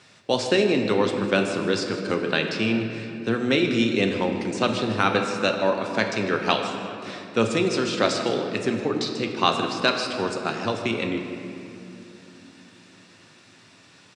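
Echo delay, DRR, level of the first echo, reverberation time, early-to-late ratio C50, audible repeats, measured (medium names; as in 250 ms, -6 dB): 156 ms, 3.0 dB, -15.0 dB, 3.0 s, 5.0 dB, 1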